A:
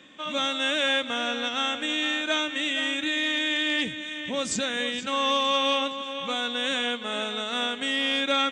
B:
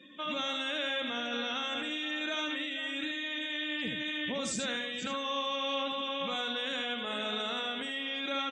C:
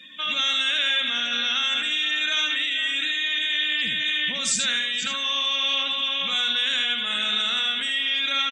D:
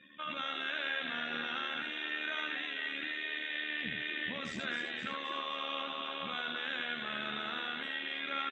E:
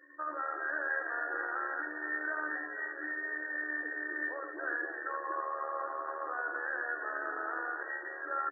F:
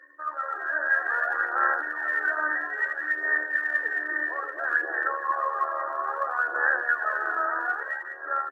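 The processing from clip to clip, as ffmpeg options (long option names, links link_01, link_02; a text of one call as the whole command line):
ffmpeg -i in.wav -filter_complex "[0:a]alimiter=level_in=2.5dB:limit=-24dB:level=0:latency=1:release=32,volume=-2.5dB,afftdn=noise_reduction=20:noise_floor=-50,asplit=2[link_01][link_02];[link_02]aecho=0:1:76:0.501[link_03];[link_01][link_03]amix=inputs=2:normalize=0" out.wav
ffmpeg -i in.wav -af "firequalizer=gain_entry='entry(200,0);entry(330,-10);entry(570,-6);entry(910,-3);entry(1500,8);entry(3200,12)':delay=0.05:min_phase=1,volume=1.5dB" out.wav
ffmpeg -i in.wav -filter_complex "[0:a]asplit=6[link_01][link_02][link_03][link_04][link_05][link_06];[link_02]adelay=258,afreqshift=120,volume=-7.5dB[link_07];[link_03]adelay=516,afreqshift=240,volume=-14.8dB[link_08];[link_04]adelay=774,afreqshift=360,volume=-22.2dB[link_09];[link_05]adelay=1032,afreqshift=480,volume=-29.5dB[link_10];[link_06]adelay=1290,afreqshift=600,volume=-36.8dB[link_11];[link_01][link_07][link_08][link_09][link_10][link_11]amix=inputs=6:normalize=0,tremolo=f=76:d=0.621,lowpass=1500,volume=-2dB" out.wav
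ffmpeg -i in.wav -af "afftfilt=real='re*between(b*sr/4096,280,1900)':imag='im*between(b*sr/4096,280,1900)':win_size=4096:overlap=0.75,volume=4dB" out.wav
ffmpeg -i in.wav -af "highpass=620,dynaudnorm=framelen=120:gausssize=13:maxgain=6dB,aphaser=in_gain=1:out_gain=1:delay=3.2:decay=0.51:speed=0.6:type=sinusoidal,volume=3dB" out.wav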